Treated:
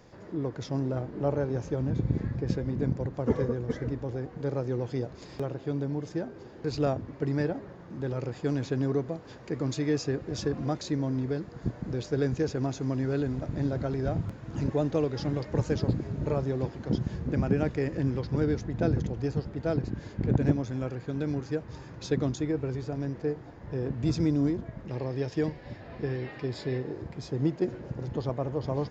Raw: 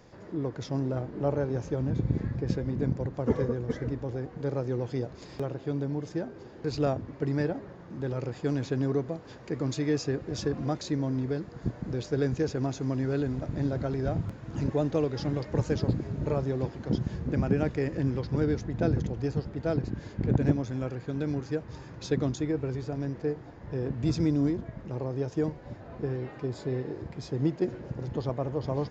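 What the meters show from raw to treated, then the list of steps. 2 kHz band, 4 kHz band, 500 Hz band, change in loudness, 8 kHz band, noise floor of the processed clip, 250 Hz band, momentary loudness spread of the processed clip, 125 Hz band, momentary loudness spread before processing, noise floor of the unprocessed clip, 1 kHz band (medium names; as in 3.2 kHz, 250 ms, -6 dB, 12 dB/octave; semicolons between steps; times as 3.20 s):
+0.5 dB, 0.0 dB, 0.0 dB, 0.0 dB, no reading, -47 dBFS, 0.0 dB, 8 LU, 0.0 dB, 8 LU, -47 dBFS, 0.0 dB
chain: time-frequency box 24.89–26.78 s, 1.6–5.6 kHz +7 dB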